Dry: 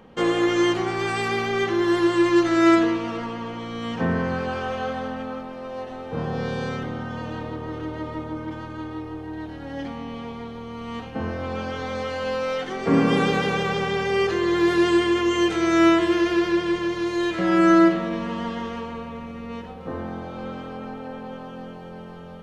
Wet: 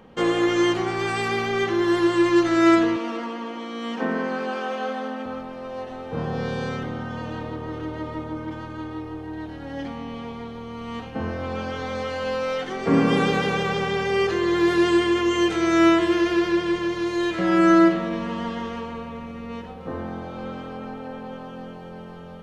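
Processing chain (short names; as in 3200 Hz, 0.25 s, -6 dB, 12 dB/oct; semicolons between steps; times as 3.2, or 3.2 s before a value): 2.96–5.26 steep high-pass 190 Hz 96 dB/oct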